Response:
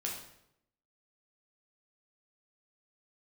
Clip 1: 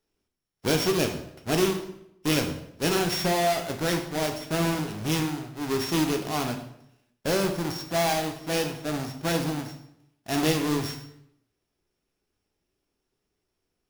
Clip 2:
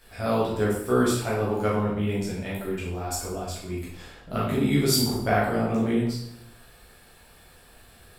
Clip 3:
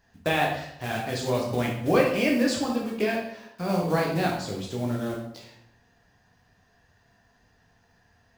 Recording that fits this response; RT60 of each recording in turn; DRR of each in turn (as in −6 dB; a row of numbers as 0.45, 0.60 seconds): 3; 0.75, 0.75, 0.75 seconds; 4.0, −7.5, −2.0 decibels